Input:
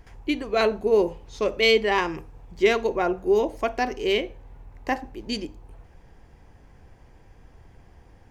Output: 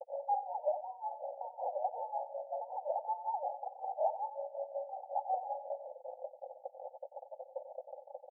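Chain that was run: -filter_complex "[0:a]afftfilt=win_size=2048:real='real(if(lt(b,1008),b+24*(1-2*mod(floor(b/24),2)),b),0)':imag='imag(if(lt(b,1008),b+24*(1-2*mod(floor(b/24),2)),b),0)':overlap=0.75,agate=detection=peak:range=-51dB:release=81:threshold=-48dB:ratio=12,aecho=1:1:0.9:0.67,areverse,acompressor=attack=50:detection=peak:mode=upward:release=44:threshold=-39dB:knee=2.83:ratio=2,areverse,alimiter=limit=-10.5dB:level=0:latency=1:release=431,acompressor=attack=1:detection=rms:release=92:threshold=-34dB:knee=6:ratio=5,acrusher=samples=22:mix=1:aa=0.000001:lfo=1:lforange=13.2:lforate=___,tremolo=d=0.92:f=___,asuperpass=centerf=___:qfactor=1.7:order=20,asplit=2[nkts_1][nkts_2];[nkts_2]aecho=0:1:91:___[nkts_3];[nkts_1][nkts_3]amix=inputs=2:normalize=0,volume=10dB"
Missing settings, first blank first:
1.8, 5.4, 650, 0.251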